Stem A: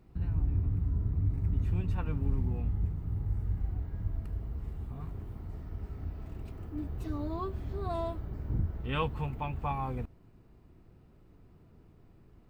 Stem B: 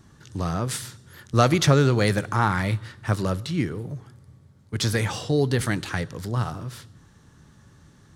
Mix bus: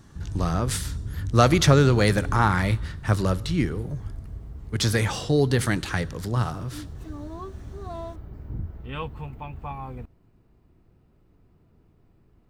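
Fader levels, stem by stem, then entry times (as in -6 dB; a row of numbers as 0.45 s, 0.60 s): -1.5 dB, +1.0 dB; 0.00 s, 0.00 s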